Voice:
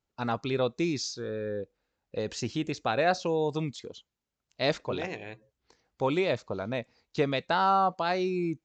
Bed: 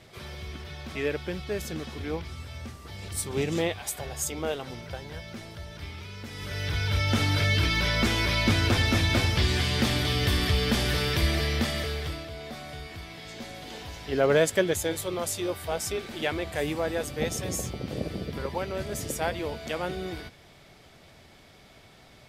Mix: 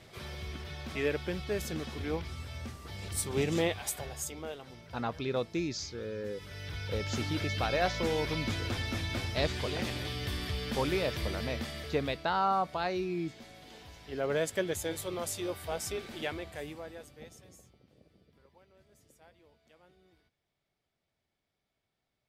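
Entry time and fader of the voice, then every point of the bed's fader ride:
4.75 s, -4.5 dB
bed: 3.88 s -2 dB
4.51 s -11 dB
14.07 s -11 dB
15.03 s -5.5 dB
16.16 s -5.5 dB
17.94 s -31 dB

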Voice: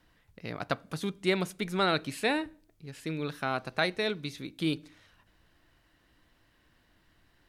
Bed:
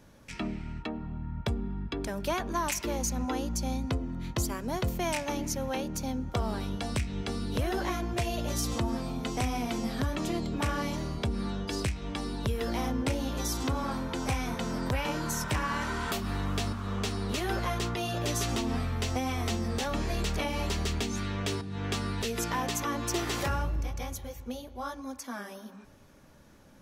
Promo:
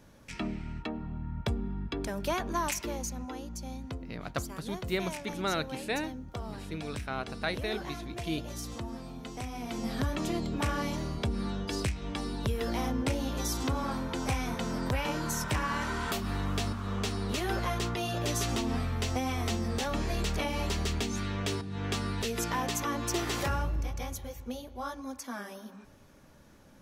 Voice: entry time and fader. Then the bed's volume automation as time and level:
3.65 s, -4.5 dB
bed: 2.65 s -0.5 dB
3.32 s -8.5 dB
9.51 s -8.5 dB
9.92 s -0.5 dB

